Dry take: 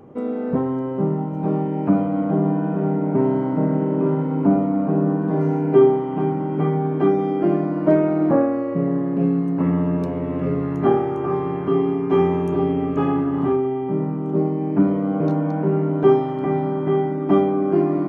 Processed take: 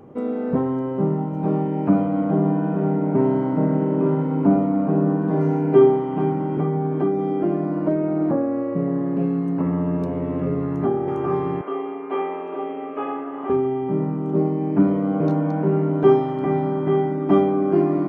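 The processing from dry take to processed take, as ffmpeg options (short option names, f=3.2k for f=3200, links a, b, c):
-filter_complex "[0:a]asettb=1/sr,asplit=3[a][b][c];[a]atrim=end=6.574[d];[b]atrim=start=6.57:end=11.08,asetpts=PTS-STARTPTS,afade=t=in:d=0.004:c=qsin,afade=t=out:st=4.506:d=0.004:c=qsin,acrossover=split=500|1400[e][f][g];[e]acompressor=threshold=-19dB:ratio=4[h];[f]acompressor=threshold=-30dB:ratio=4[i];[g]acompressor=threshold=-51dB:ratio=4[j];[h][i][j]amix=inputs=3:normalize=0[k];[c]atrim=start=11.076[l];[d][k]acrossfade=d=0.004:c1=hsin:c2=qsin[m];[m][l]acrossfade=d=0.004:c1=qsin:c2=hsin,asettb=1/sr,asplit=3[n][o][p];[n]atrim=end=11.614[q];[o]atrim=start=11.61:end=13.5,asetpts=PTS-STARTPTS,afade=t=in:d=0.004:c=qsin,afade=t=out:st=1.886:d=0.004:c=qsin,highpass=f=360:w=0.5412,highpass=f=360:w=1.3066,equalizer=f=370:t=q:w=4:g=-8,equalizer=f=920:t=q:w=4:g=-3,equalizer=f=1.7k:t=q:w=4:g=-4,lowpass=f=2.9k:w=0.5412,lowpass=f=2.9k:w=1.3066[r];[p]atrim=start=13.496[s];[q][r]acrossfade=d=0.004:c1=hsin:c2=qsin[t];[t][s]acrossfade=d=0.004:c1=qsin:c2=hsin"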